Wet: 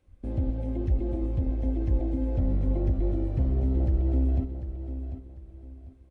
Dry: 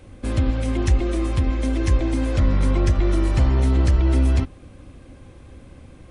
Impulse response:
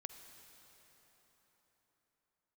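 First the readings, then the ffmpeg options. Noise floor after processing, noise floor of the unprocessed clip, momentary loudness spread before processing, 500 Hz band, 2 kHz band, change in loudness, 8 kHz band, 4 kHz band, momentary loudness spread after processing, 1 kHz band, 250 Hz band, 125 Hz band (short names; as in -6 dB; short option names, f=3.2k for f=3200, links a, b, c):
-51 dBFS, -46 dBFS, 5 LU, -7.5 dB, under -20 dB, -7.5 dB, under -30 dB, under -25 dB, 14 LU, -14.0 dB, -6.5 dB, -7.0 dB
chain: -filter_complex "[0:a]acrossover=split=4100[a][b];[b]acompressor=threshold=-51dB:ratio=4:attack=1:release=60[c];[a][c]amix=inputs=2:normalize=0,afwtdn=0.0631,aecho=1:1:746|1492|2238:0.299|0.0866|0.0251,volume=-7.5dB"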